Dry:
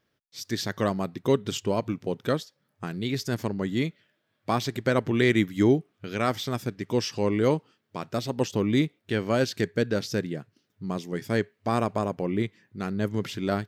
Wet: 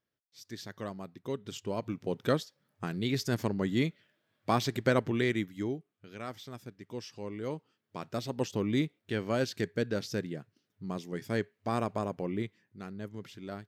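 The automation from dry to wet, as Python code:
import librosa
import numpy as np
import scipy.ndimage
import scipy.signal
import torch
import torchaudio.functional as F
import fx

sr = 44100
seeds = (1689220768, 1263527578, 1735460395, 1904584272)

y = fx.gain(x, sr, db=fx.line((1.33, -13.5), (2.25, -2.0), (4.89, -2.0), (5.75, -15.0), (7.41, -15.0), (7.97, -6.0), (12.26, -6.0), (13.12, -14.5)))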